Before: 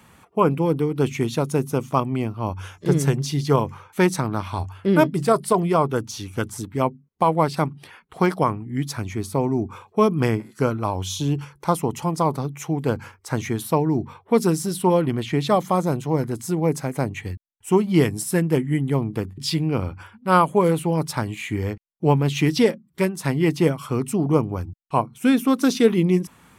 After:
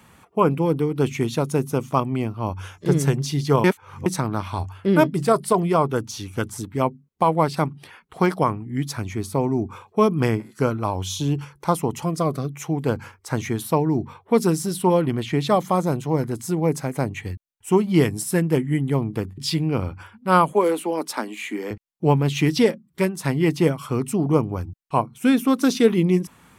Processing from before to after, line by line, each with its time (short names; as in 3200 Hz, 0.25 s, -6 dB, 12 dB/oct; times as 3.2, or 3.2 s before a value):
3.64–4.06 reverse
12.05–12.55 Butterworth band-stop 890 Hz, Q 2.9
20.53–21.71 steep high-pass 220 Hz 48 dB/oct